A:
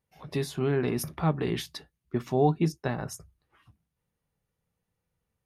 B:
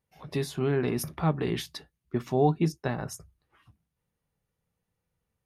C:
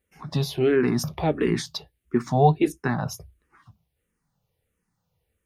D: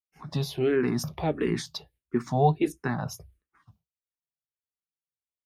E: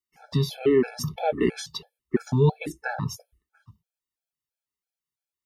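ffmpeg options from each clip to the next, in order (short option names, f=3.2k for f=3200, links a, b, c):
-af anull
-filter_complex "[0:a]asplit=2[a][b];[b]afreqshift=-1.5[c];[a][c]amix=inputs=2:normalize=1,volume=8.5dB"
-af "agate=range=-33dB:threshold=-52dB:ratio=3:detection=peak,volume=-4dB"
-af "afftfilt=real='re*gt(sin(2*PI*3*pts/sr)*(1-2*mod(floor(b*sr/1024/440),2)),0)':imag='im*gt(sin(2*PI*3*pts/sr)*(1-2*mod(floor(b*sr/1024/440),2)),0)':win_size=1024:overlap=0.75,volume=5.5dB"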